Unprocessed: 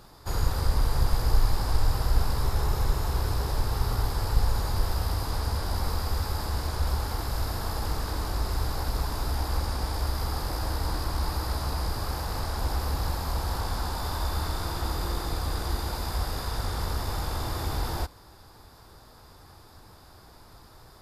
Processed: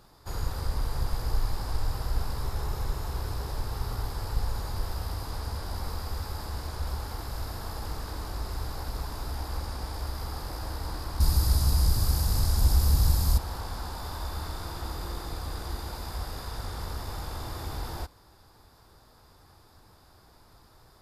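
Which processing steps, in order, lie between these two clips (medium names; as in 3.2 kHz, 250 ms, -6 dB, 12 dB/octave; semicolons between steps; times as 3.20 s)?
11.20–13.38 s: tone controls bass +13 dB, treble +14 dB; trim -5.5 dB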